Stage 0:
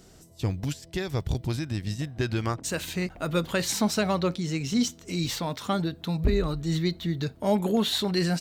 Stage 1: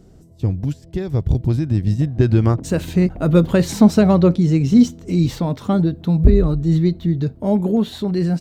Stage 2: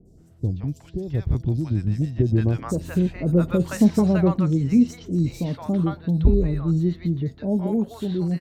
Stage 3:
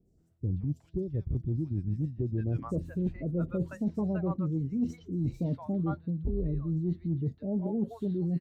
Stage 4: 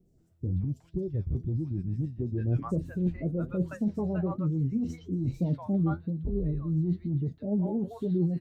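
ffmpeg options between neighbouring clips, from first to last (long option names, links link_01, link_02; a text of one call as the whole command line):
ffmpeg -i in.wav -af "tiltshelf=frequency=770:gain=9,dynaudnorm=framelen=250:gausssize=13:maxgain=11.5dB" out.wav
ffmpeg -i in.wav -filter_complex "[0:a]adynamicequalizer=threshold=0.00501:dfrequency=4000:dqfactor=1.4:tfrequency=4000:tqfactor=1.4:attack=5:release=100:ratio=0.375:range=2.5:mode=cutabove:tftype=bell,acrossover=split=700|4400[link_01][link_02][link_03];[link_03]adelay=50[link_04];[link_02]adelay=170[link_05];[link_01][link_05][link_04]amix=inputs=3:normalize=0,volume=-5dB" out.wav
ffmpeg -i in.wav -af "afftdn=noise_reduction=16:noise_floor=-29,areverse,acompressor=threshold=-27dB:ratio=16,areverse" out.wav
ffmpeg -i in.wav -filter_complex "[0:a]asplit=2[link_01][link_02];[link_02]alimiter=level_in=2.5dB:limit=-24dB:level=0:latency=1:release=19,volume=-2.5dB,volume=3dB[link_03];[link_01][link_03]amix=inputs=2:normalize=0,flanger=delay=5:depth=8.1:regen=52:speed=1.1:shape=triangular,volume=-1dB" out.wav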